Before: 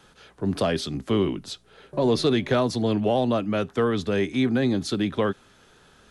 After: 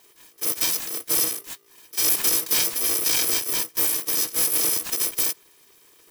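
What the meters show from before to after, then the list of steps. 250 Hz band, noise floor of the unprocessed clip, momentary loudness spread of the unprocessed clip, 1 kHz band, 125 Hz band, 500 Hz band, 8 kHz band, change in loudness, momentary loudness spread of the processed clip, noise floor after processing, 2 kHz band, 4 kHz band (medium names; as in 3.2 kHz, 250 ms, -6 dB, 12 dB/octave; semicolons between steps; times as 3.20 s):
-16.5 dB, -56 dBFS, 9 LU, -7.5 dB, -19.0 dB, -14.5 dB, +22.0 dB, +4.0 dB, 8 LU, -56 dBFS, +0.5 dB, +6.0 dB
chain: bit-reversed sample order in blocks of 256 samples; polarity switched at an audio rate 400 Hz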